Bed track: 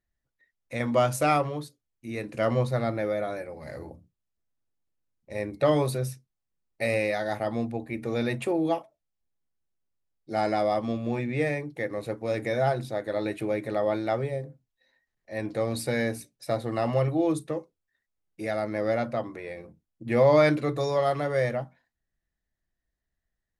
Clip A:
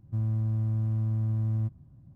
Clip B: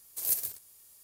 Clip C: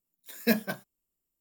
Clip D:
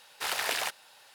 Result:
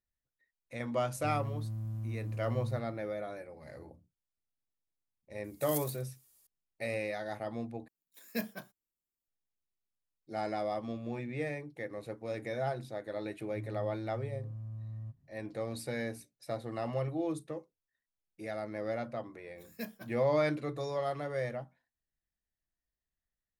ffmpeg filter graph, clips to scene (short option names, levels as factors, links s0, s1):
-filter_complex "[1:a]asplit=2[s0][s1];[3:a]asplit=2[s2][s3];[0:a]volume=0.335[s4];[s0]aemphasis=mode=production:type=75kf[s5];[s1]aecho=1:1:7.4:0.54[s6];[s4]asplit=2[s7][s8];[s7]atrim=end=7.884[s9];[s2]atrim=end=1.4,asetpts=PTS-STARTPTS,volume=0.282[s10];[s8]atrim=start=9.276[s11];[s5]atrim=end=2.15,asetpts=PTS-STARTPTS,volume=0.316,afade=t=in:d=0.004:c=hsin,afade=t=out:st=2.146:d=0.004:c=hsin,adelay=1110[s12];[2:a]atrim=end=1.03,asetpts=PTS-STARTPTS,volume=0.316,afade=t=in:d=0.004:c=hsin,afade=t=out:st=1.026:d=0.004:c=hsin,adelay=5440[s13];[s6]atrim=end=2.15,asetpts=PTS-STARTPTS,volume=0.15,afade=t=in:d=0.004:c=hsin,afade=t=out:st=2.146:d=0.004:c=hsin,adelay=13430[s14];[s3]atrim=end=1.4,asetpts=PTS-STARTPTS,volume=0.15,afade=t=in:d=0.004:c=hsin,afade=t=out:st=1.396:d=0.004:c=hsin,adelay=19320[s15];[s9][s10]acrossfade=d=0.004:c1=hsin:c2=hsin[s16];[s16][s11]acrossfade=d=0.004:c1=hsin:c2=hsin[s17];[s17][s12][s13][s14][s15]amix=inputs=5:normalize=0"